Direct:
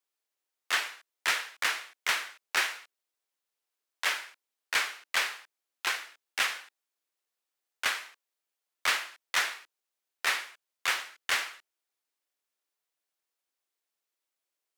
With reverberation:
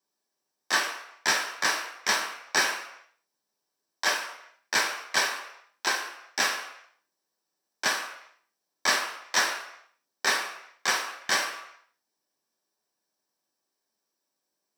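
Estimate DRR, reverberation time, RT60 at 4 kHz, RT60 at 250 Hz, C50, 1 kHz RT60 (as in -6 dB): 1.0 dB, 0.80 s, 0.75 s, 0.60 s, 8.0 dB, 0.80 s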